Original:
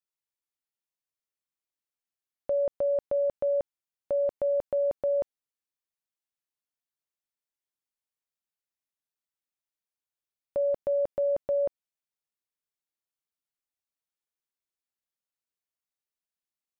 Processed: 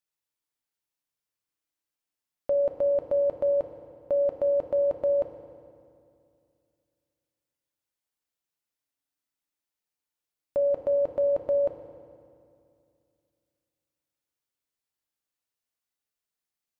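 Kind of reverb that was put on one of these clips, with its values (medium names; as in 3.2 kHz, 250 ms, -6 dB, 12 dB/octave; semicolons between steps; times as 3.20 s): FDN reverb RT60 2.4 s, low-frequency decay 1.25×, high-frequency decay 0.85×, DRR 4 dB; trim +2 dB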